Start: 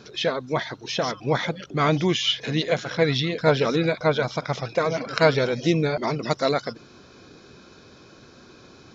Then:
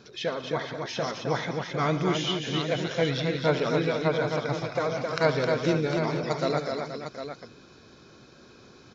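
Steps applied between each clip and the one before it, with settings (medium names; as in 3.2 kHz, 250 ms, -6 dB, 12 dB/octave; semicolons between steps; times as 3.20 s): dynamic bell 3.4 kHz, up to -3 dB, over -36 dBFS, Q 1.2; on a send: multi-tap echo 71/116/190/264/475/754 ms -14/-18/-16/-5/-11/-9 dB; on the sum: trim -5.5 dB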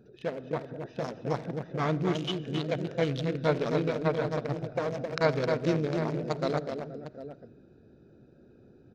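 local Wiener filter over 41 samples; on a send at -20.5 dB: reverberation RT60 1.3 s, pre-delay 10 ms; on the sum: trim -1.5 dB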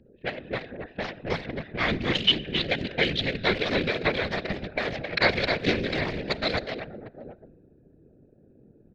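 level-controlled noise filter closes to 460 Hz, open at -25.5 dBFS; whisper effect; high-order bell 2.8 kHz +14.5 dB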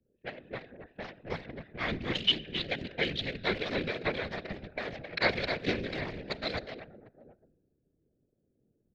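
three bands expanded up and down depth 40%; trim -7.5 dB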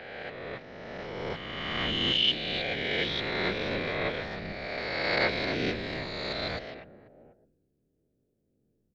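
reverse spectral sustain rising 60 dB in 2.12 s; trim -3.5 dB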